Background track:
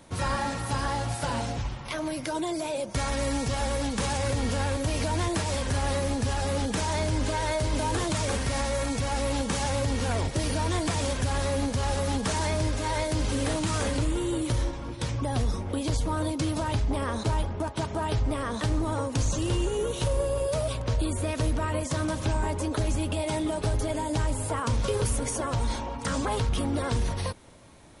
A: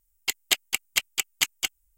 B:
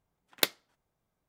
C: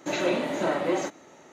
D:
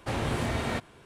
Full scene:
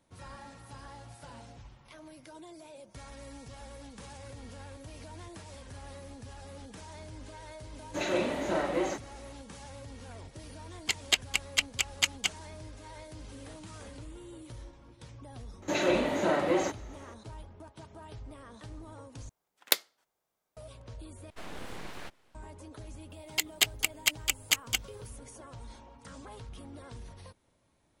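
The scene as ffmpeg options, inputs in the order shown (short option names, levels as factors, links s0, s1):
-filter_complex "[3:a]asplit=2[s0][s1];[1:a]asplit=2[s2][s3];[0:a]volume=0.112[s4];[s2]lowpass=7800[s5];[s1]acontrast=53[s6];[2:a]bass=f=250:g=-15,treble=f=4000:g=4[s7];[4:a]aeval=exprs='abs(val(0))':c=same[s8];[s4]asplit=3[s9][s10][s11];[s9]atrim=end=19.294[s12];[s7]atrim=end=1.28,asetpts=PTS-STARTPTS,volume=0.944[s13];[s10]atrim=start=20.566:end=21.304[s14];[s8]atrim=end=1.05,asetpts=PTS-STARTPTS,volume=0.299[s15];[s11]atrim=start=22.346[s16];[s0]atrim=end=1.52,asetpts=PTS-STARTPTS,volume=0.631,afade=t=in:d=0.1,afade=t=out:st=1.42:d=0.1,adelay=7880[s17];[s5]atrim=end=1.97,asetpts=PTS-STARTPTS,volume=0.794,afade=t=in:d=0.004:c=hsin,afade=t=out:st=1.966:d=0.004:c=hsin,adelay=10610[s18];[s6]atrim=end=1.52,asetpts=PTS-STARTPTS,volume=0.447,afade=t=in:d=0.004:c=hsin,afade=t=out:st=1.516:d=0.004:c=hsin,adelay=15620[s19];[s3]atrim=end=1.97,asetpts=PTS-STARTPTS,volume=0.75,afade=t=in:d=0.004:c=hsin,afade=t=out:st=1.966:d=0.004:c=hsin,adelay=23100[s20];[s12][s13]acrossfade=d=0.004:c1=hsin:c2=hsin[s21];[s21][s14]acrossfade=d=0.004:c1=hsin:c2=hsin[s22];[s22][s15]acrossfade=d=0.004:c1=hsin:c2=hsin[s23];[s23][s16]acrossfade=d=0.004:c1=hsin:c2=hsin[s24];[s24][s17][s18][s19][s20]amix=inputs=5:normalize=0"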